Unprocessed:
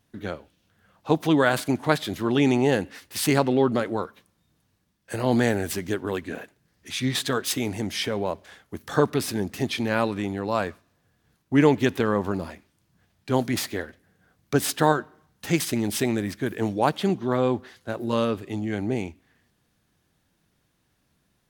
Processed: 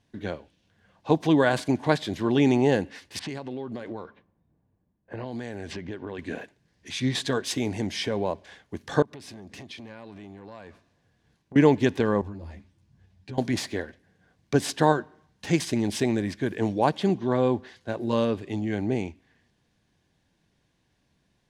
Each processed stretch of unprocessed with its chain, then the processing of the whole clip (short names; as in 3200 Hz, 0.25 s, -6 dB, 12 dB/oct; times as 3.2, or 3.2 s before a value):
3.19–6.19 low-pass opened by the level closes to 850 Hz, open at -18 dBFS + compressor, threshold -31 dBFS
9.02–11.56 compressor 8:1, threshold -37 dBFS + core saturation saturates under 640 Hz
12.21–13.38 bell 87 Hz +13 dB 2.4 oct + compressor 2.5:1, threshold -37 dBFS + ensemble effect
whole clip: LPF 6900 Hz 12 dB/oct; notch 1300 Hz, Q 5.4; dynamic EQ 2700 Hz, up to -3 dB, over -37 dBFS, Q 0.88